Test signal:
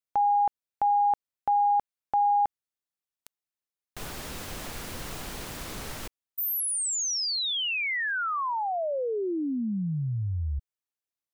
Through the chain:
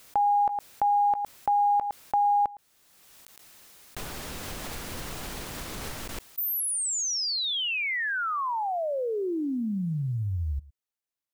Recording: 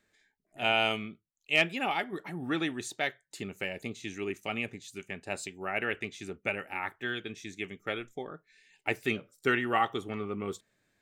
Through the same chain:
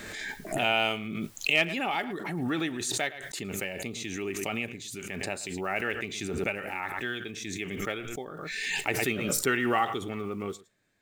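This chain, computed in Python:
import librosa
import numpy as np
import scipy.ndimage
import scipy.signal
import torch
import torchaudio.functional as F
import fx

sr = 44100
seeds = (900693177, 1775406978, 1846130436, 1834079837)

y = fx.block_float(x, sr, bits=7)
y = y + 10.0 ** (-20.5 / 20.0) * np.pad(y, (int(111 * sr / 1000.0), 0))[:len(y)]
y = fx.pre_swell(y, sr, db_per_s=27.0)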